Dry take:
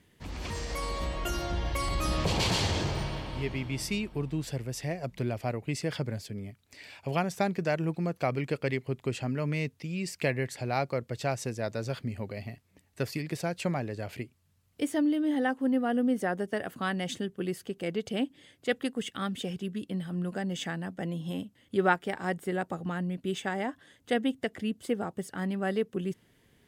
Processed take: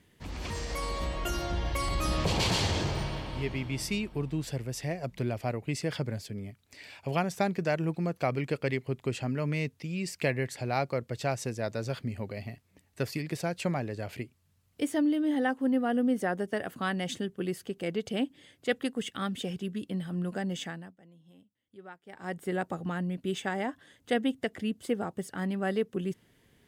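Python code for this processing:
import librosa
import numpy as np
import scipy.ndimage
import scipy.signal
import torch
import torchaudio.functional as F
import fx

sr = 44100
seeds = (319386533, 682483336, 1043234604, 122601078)

y = fx.edit(x, sr, fx.fade_down_up(start_s=20.51, length_s=2.01, db=-23.0, fade_s=0.47), tone=tone)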